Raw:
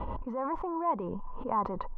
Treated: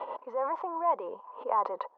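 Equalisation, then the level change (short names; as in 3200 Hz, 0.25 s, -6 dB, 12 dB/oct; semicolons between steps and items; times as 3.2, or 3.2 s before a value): ladder high-pass 440 Hz, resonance 40%; air absorption 130 m; high shelf 2700 Hz +11 dB; +7.5 dB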